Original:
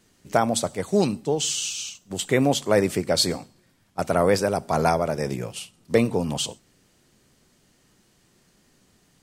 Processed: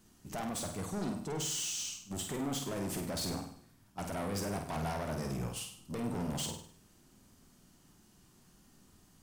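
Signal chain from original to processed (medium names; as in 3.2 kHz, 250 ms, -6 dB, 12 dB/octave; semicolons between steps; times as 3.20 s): graphic EQ 125/500/2000/4000/8000 Hz -4/-10/-9/-6/-4 dB; peak limiter -22 dBFS, peak gain reduction 10.5 dB; saturation -36 dBFS, distortion -7 dB; on a send: flutter echo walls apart 8.6 m, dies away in 0.53 s; on the sum: trim +1.5 dB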